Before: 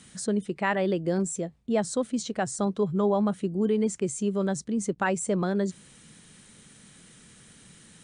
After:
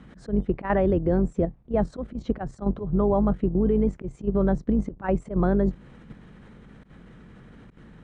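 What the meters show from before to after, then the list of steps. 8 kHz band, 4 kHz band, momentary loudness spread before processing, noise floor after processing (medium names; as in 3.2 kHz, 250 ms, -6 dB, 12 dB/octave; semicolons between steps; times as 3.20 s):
under -25 dB, under -10 dB, 5 LU, -53 dBFS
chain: octave divider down 2 oct, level -4 dB; low-pass 1.3 kHz 12 dB/octave; in parallel at +1 dB: compression 10:1, threshold -32 dBFS, peak gain reduction 13.5 dB; on the sum: slow attack 123 ms; level held to a coarse grid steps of 9 dB; trim +6.5 dB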